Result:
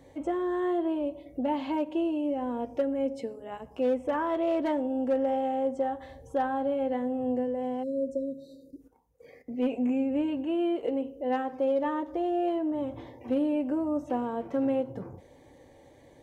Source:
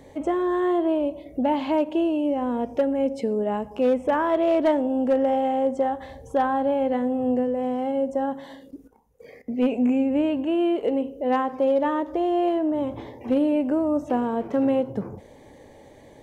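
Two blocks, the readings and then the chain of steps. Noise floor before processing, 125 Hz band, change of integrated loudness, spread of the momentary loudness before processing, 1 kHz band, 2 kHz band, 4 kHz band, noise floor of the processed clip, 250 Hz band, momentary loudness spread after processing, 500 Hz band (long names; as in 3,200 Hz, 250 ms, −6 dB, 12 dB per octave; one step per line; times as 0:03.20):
−49 dBFS, −7.0 dB, −6.0 dB, 6 LU, −6.5 dB, −6.5 dB, −6.5 dB, −56 dBFS, −6.0 dB, 9 LU, −6.0 dB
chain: notch comb filter 210 Hz
time-frequency box erased 0:07.83–0:08.81, 610–3,700 Hz
level −5.5 dB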